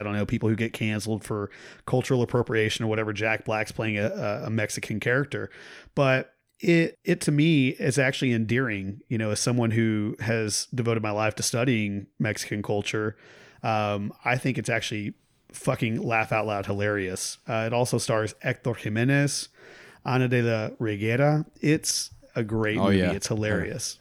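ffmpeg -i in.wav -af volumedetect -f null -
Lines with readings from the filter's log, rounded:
mean_volume: -26.0 dB
max_volume: -8.2 dB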